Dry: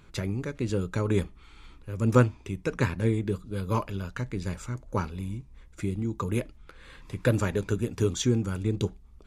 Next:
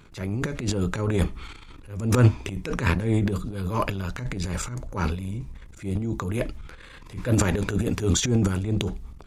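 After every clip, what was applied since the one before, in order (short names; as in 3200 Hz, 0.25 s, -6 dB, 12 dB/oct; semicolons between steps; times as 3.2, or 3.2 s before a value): transient shaper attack -10 dB, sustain +12 dB; gain +2.5 dB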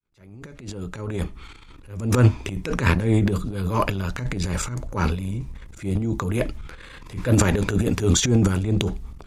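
opening faded in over 2.88 s; gain +3.5 dB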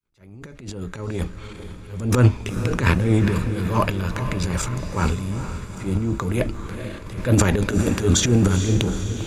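diffused feedback echo 0.45 s, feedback 57%, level -10 dB; attack slew limiter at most 260 dB/s; gain +1 dB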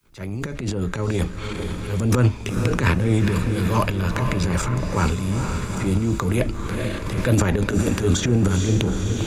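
three-band squash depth 70%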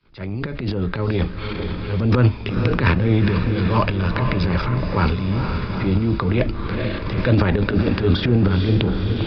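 downsampling 11025 Hz; gain +2 dB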